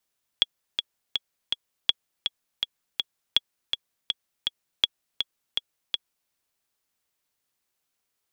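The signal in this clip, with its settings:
click track 163 BPM, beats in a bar 4, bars 4, 3,350 Hz, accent 6.5 dB −5 dBFS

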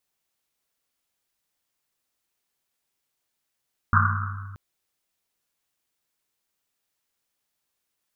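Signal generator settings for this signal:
drum after Risset length 0.63 s, pitch 98 Hz, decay 2.13 s, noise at 1,300 Hz, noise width 440 Hz, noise 50%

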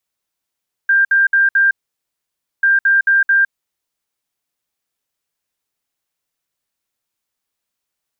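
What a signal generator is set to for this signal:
beeps in groups sine 1,590 Hz, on 0.16 s, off 0.06 s, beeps 4, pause 0.92 s, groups 2, −9 dBFS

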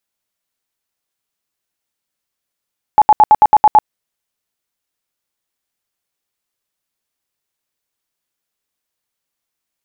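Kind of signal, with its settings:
tone bursts 851 Hz, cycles 32, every 0.11 s, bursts 8, −3 dBFS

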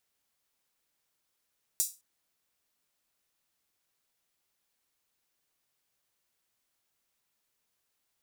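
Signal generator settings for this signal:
open synth hi-hat length 0.21 s, high-pass 6,800 Hz, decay 0.27 s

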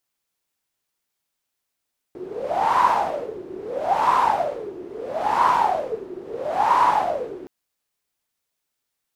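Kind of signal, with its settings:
wind from filtered noise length 5.32 s, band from 360 Hz, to 1,000 Hz, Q 11, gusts 4, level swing 18.5 dB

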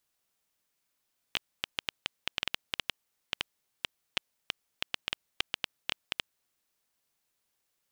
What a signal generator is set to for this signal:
Geiger counter clicks 6.1 per second −10.5 dBFS 5.19 s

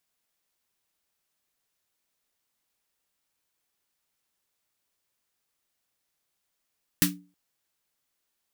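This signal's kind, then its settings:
synth snare length 0.32 s, tones 180 Hz, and 290 Hz, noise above 1,300 Hz, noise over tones 4 dB, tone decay 0.36 s, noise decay 0.17 s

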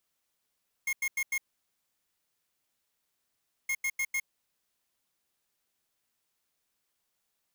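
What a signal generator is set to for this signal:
beeps in groups square 2,150 Hz, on 0.06 s, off 0.09 s, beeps 4, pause 2.31 s, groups 2, −30 dBFS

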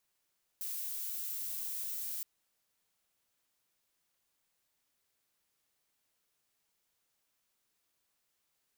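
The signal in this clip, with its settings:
noise violet, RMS −39 dBFS 1.62 s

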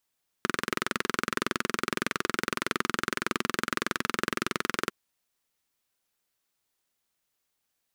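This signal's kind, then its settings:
pulse-train model of a single-cylinder engine, steady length 4.45 s, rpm 2,600, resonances 240/360/1,300 Hz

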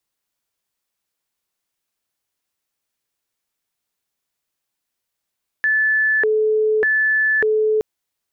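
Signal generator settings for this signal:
siren hi-lo 432–1,740 Hz 0.84 per second sine −14 dBFS 2.17 s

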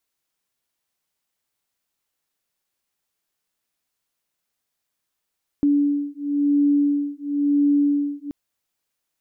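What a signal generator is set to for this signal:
two tones that beat 287 Hz, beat 0.97 Hz, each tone −20 dBFS 2.68 s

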